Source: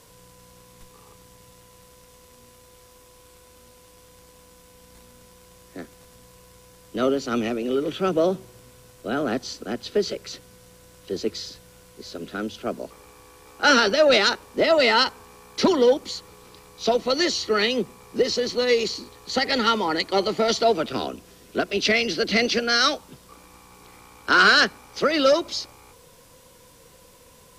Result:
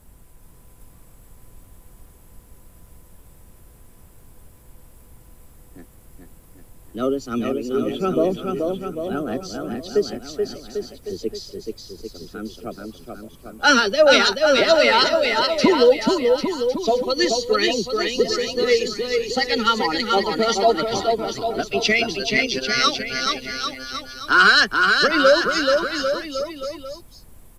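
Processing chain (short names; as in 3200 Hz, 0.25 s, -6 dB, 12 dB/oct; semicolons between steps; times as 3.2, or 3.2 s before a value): per-bin expansion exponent 1.5; 22.17–22.84 robotiser 131 Hz; added noise brown -52 dBFS; on a send: bouncing-ball echo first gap 0.43 s, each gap 0.85×, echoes 5; on the sum: gain +4.5 dB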